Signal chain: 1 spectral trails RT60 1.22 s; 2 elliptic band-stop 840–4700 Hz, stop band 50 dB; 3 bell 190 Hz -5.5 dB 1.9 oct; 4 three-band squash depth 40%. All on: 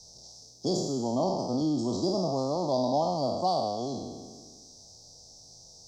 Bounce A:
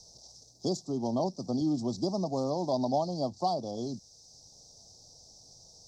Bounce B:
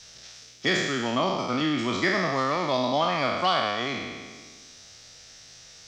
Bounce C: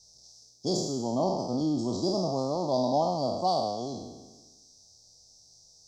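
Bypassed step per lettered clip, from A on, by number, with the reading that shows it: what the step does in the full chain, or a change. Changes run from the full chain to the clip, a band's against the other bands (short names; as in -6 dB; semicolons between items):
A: 1, 250 Hz band +2.0 dB; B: 2, 4 kHz band +8.0 dB; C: 4, momentary loudness spread change -11 LU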